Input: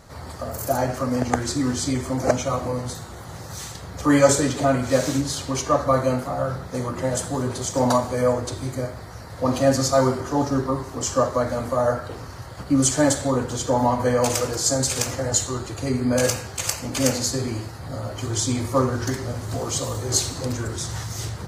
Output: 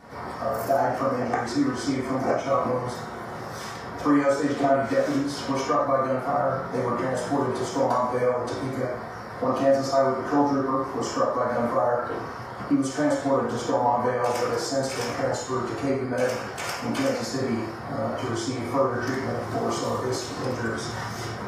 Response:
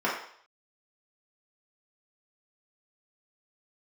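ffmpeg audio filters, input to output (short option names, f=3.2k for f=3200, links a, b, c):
-filter_complex "[0:a]acompressor=threshold=-24dB:ratio=6[a];[1:a]atrim=start_sample=2205,afade=t=out:st=0.19:d=0.01,atrim=end_sample=8820[b];[a][b]afir=irnorm=-1:irlink=0,volume=-7.5dB"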